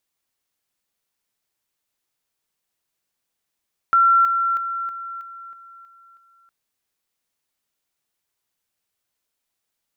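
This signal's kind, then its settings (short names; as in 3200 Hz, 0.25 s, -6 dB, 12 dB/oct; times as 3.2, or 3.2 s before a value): level ladder 1360 Hz -11.5 dBFS, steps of -6 dB, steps 8, 0.32 s 0.00 s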